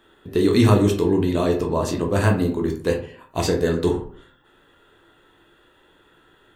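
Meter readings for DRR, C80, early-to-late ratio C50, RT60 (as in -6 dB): 1.5 dB, 13.5 dB, 9.0 dB, 0.50 s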